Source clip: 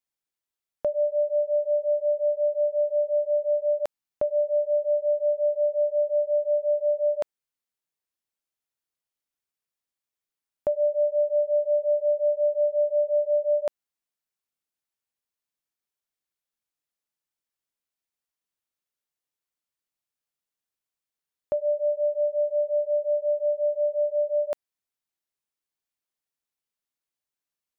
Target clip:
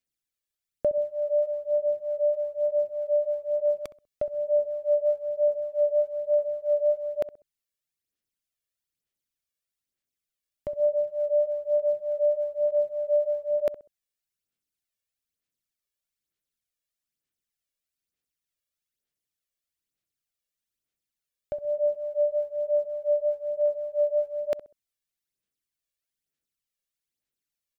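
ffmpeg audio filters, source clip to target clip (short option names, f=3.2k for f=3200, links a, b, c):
-filter_complex "[0:a]equalizer=f=920:t=o:w=0.95:g=-12,aphaser=in_gain=1:out_gain=1:delay=1.8:decay=0.52:speed=1.1:type=sinusoidal,asplit=2[a][b];[b]adelay=65,lowpass=f=940:p=1,volume=-13.5dB,asplit=2[c][d];[d]adelay=65,lowpass=f=940:p=1,volume=0.34,asplit=2[e][f];[f]adelay=65,lowpass=f=940:p=1,volume=0.34[g];[a][c][e][g]amix=inputs=4:normalize=0"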